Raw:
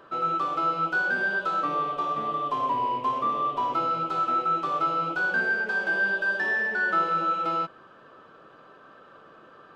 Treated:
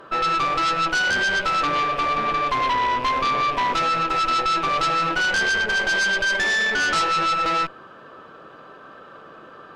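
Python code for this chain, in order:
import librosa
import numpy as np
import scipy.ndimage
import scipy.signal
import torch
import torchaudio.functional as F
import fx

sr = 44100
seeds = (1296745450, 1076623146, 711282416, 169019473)

y = fx.rattle_buzz(x, sr, strikes_db=-49.0, level_db=-34.0)
y = fx.cheby_harmonics(y, sr, harmonics=(4, 5, 6), levels_db=(-11, -11, -7), full_scale_db=-15.0)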